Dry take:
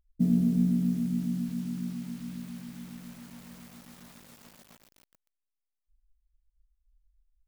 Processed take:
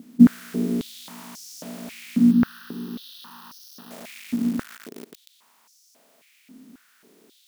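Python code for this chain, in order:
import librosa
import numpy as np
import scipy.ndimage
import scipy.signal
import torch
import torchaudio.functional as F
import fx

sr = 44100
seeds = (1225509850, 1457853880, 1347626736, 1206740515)

y = fx.bin_compress(x, sr, power=0.4)
y = fx.fixed_phaser(y, sr, hz=2200.0, stages=6, at=(2.31, 3.91))
y = fx.filter_held_highpass(y, sr, hz=3.7, low_hz=250.0, high_hz=5600.0)
y = y * librosa.db_to_amplitude(5.0)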